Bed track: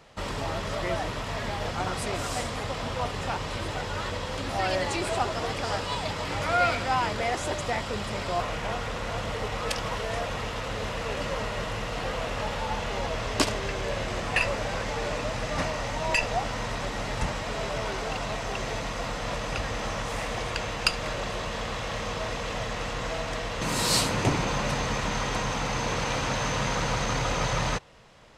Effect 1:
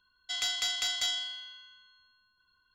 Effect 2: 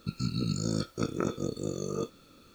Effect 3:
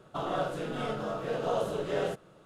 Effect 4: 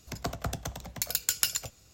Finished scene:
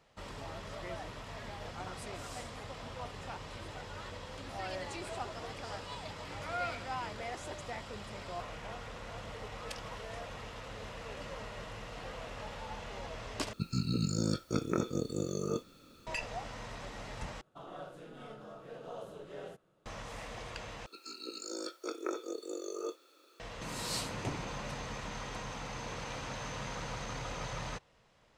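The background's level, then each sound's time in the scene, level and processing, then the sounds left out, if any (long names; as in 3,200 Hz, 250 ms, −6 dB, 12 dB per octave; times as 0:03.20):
bed track −13 dB
0:13.53: overwrite with 2 −1.5 dB
0:17.41: overwrite with 3 −15 dB
0:20.86: overwrite with 2 −3.5 dB + elliptic high-pass filter 340 Hz, stop band 60 dB
not used: 1, 4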